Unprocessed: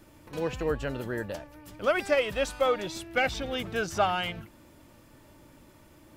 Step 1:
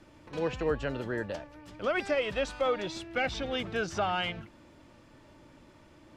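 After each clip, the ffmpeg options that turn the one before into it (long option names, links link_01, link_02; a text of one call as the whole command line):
ffmpeg -i in.wav -filter_complex "[0:a]lowpass=5600,lowshelf=frequency=150:gain=-3,acrossover=split=340[link_01][link_02];[link_02]alimiter=limit=-21dB:level=0:latency=1:release=85[link_03];[link_01][link_03]amix=inputs=2:normalize=0" out.wav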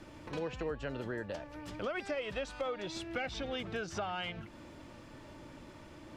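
ffmpeg -i in.wav -af "acompressor=threshold=-43dB:ratio=3,volume=4.5dB" out.wav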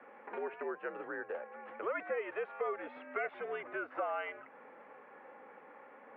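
ffmpeg -i in.wav -af "highpass=frequency=500:width_type=q:width=0.5412,highpass=frequency=500:width_type=q:width=1.307,lowpass=frequency=2200:width_type=q:width=0.5176,lowpass=frequency=2200:width_type=q:width=0.7071,lowpass=frequency=2200:width_type=q:width=1.932,afreqshift=-76,volume=2.5dB" out.wav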